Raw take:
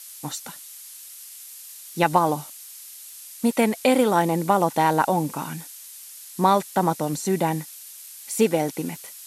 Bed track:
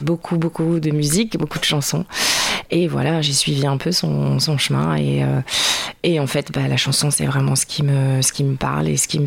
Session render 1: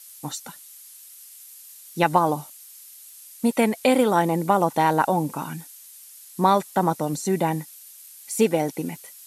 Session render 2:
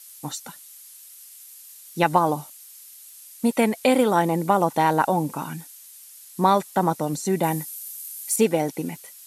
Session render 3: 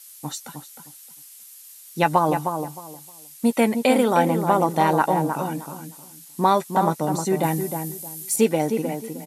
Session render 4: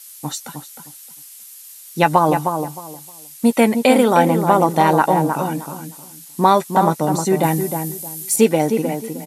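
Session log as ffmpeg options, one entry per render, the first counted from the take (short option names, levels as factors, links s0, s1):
-af "afftdn=nr=6:nf=-42"
-filter_complex "[0:a]asettb=1/sr,asplit=3[s0][s1][s2];[s0]atrim=end=7.434[s3];[s1]atrim=start=7.43:end=8.36,asetpts=PTS-STARTPTS,afade=t=in:d=0.004:c=qsin,afade=t=out:st=0.926:d=0.004:c=qsin,highshelf=f=7400:g=12[s4];[s2]atrim=start=8.356[s5];[s3][s4]acrossfade=d=0.004:c1=hsin:c2=qsin[s6];[s6][s5]acrossfade=d=0.004:c1=qsin:c2=hsin"
-filter_complex "[0:a]asplit=2[s0][s1];[s1]adelay=13,volume=0.237[s2];[s0][s2]amix=inputs=2:normalize=0,asplit=2[s3][s4];[s4]adelay=310,lowpass=f=1400:p=1,volume=0.501,asplit=2[s5][s6];[s6]adelay=310,lowpass=f=1400:p=1,volume=0.24,asplit=2[s7][s8];[s8]adelay=310,lowpass=f=1400:p=1,volume=0.24[s9];[s3][s5][s7][s9]amix=inputs=4:normalize=0"
-af "volume=1.78,alimiter=limit=0.891:level=0:latency=1"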